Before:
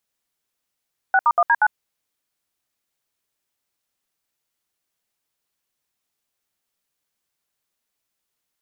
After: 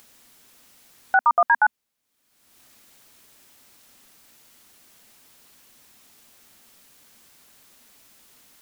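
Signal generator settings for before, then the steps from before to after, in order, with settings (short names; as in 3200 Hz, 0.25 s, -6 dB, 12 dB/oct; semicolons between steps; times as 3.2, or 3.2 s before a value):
DTMF "6*1D9", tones 51 ms, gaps 68 ms, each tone -15 dBFS
bell 240 Hz +7 dB 0.46 oct; upward compressor, threshold -34 dBFS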